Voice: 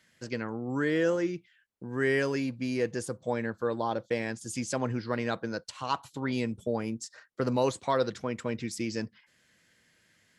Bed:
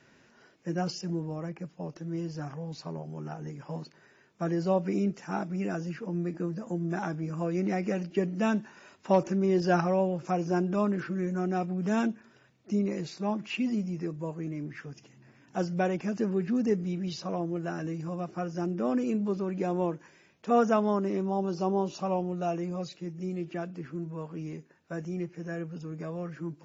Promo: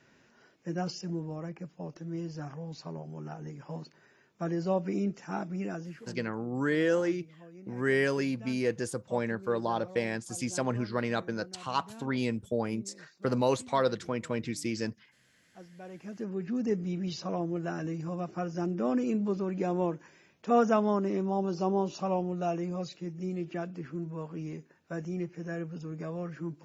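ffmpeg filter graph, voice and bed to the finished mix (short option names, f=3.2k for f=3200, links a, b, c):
-filter_complex "[0:a]adelay=5850,volume=0dB[a];[1:a]volume=17.5dB,afade=t=out:st=5.57:d=0.73:silence=0.125893,afade=t=in:st=15.81:d=1.2:silence=0.1[b];[a][b]amix=inputs=2:normalize=0"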